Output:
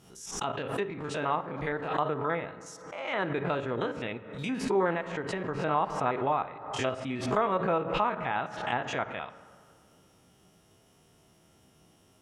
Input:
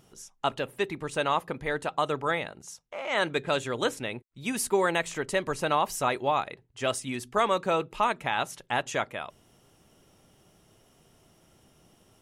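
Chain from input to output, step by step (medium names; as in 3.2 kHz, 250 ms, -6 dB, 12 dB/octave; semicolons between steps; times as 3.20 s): spectrogram pixelated in time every 50 ms; high-pass 41 Hz; band-stop 570 Hz, Q 16; low-pass that closes with the level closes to 1.8 kHz, closed at -28 dBFS; 4.94–5.56 s: compression 2:1, threshold -31 dBFS, peak gain reduction 4.5 dB; reverberation RT60 2.1 s, pre-delay 3 ms, DRR 12.5 dB; swell ahead of each attack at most 67 dB/s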